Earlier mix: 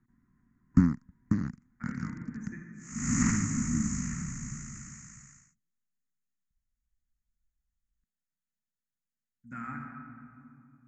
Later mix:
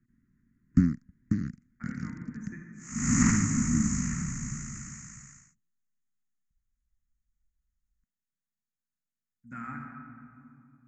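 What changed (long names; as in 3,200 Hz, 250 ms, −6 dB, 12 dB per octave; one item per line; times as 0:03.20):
first sound: add Butterworth band-reject 780 Hz, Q 0.7
second sound +3.5 dB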